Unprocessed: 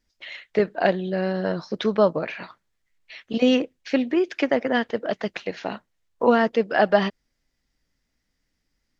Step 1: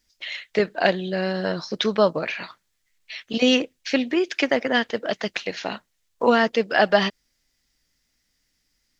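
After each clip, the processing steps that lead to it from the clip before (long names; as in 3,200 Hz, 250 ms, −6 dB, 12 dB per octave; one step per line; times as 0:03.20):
high-shelf EQ 2,200 Hz +12 dB
level −1 dB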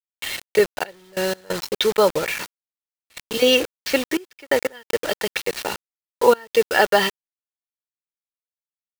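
comb filter 2.2 ms, depth 61%
bit reduction 5 bits
gate pattern "xxxxx..x.x" 90 BPM −24 dB
level +1.5 dB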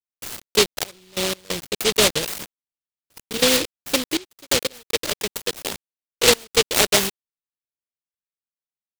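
running median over 3 samples
high-frequency loss of the air 280 metres
short delay modulated by noise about 3,300 Hz, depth 0.32 ms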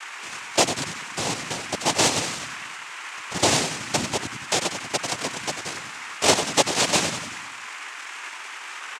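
noise in a band 1,100–2,700 Hz −35 dBFS
echo with shifted repeats 94 ms, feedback 58%, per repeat −85 Hz, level −8.5 dB
cochlear-implant simulation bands 4
level −2.5 dB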